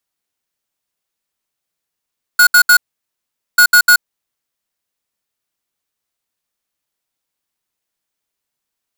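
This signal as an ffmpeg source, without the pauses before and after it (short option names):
-f lavfi -i "aevalsrc='0.447*(2*lt(mod(1450*t,1),0.5)-1)*clip(min(mod(mod(t,1.19),0.15),0.08-mod(mod(t,1.19),0.15))/0.005,0,1)*lt(mod(t,1.19),0.45)':d=2.38:s=44100"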